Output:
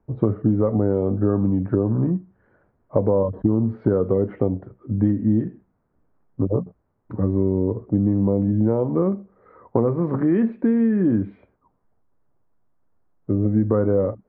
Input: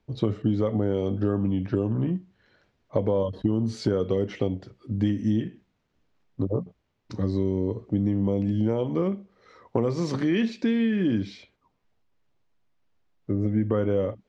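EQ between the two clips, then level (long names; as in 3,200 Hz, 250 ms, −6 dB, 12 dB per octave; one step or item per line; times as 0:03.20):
low-pass filter 1,400 Hz 24 dB per octave
+5.0 dB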